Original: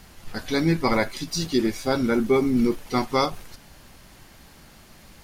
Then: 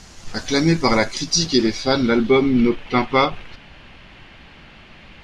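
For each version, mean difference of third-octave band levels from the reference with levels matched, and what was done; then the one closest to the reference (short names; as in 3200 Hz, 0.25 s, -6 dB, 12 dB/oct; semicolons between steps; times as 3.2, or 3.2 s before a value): 4.0 dB: low-pass sweep 6500 Hz -> 2800 Hz, 1.1–2.76; gain +4.5 dB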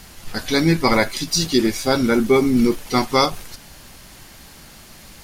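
2.0 dB: bell 9700 Hz +5.5 dB 3 oct; gain +4.5 dB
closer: second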